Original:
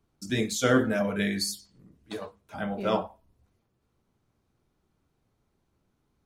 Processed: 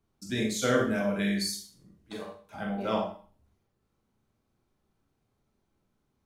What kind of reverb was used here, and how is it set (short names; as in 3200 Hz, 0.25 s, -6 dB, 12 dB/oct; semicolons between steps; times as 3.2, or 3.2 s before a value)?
Schroeder reverb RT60 0.41 s, combs from 29 ms, DRR 1 dB; gain -4.5 dB